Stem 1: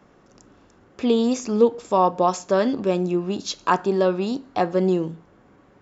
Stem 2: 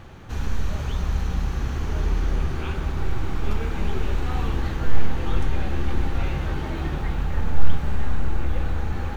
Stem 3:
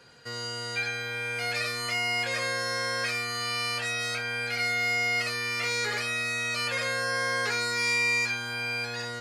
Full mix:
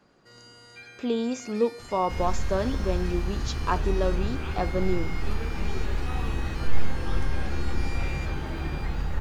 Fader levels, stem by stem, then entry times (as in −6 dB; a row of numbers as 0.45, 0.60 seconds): −7.5, −4.0, −16.0 decibels; 0.00, 1.80, 0.00 seconds